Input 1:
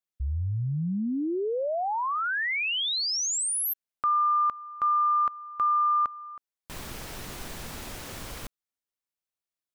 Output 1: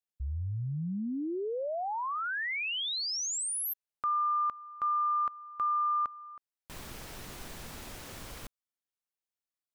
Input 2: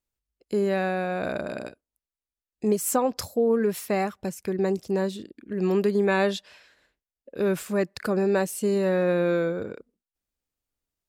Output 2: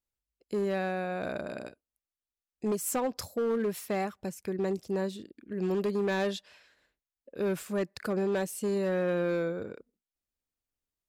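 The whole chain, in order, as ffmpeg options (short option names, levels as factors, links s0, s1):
-af "asoftclip=type=hard:threshold=0.112,volume=0.531"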